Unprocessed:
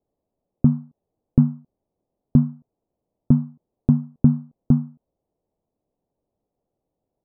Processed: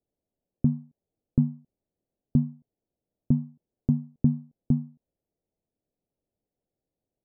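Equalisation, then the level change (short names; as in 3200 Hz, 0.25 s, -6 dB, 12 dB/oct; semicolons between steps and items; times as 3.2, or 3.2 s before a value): Gaussian blur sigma 9.4 samples; -6.5 dB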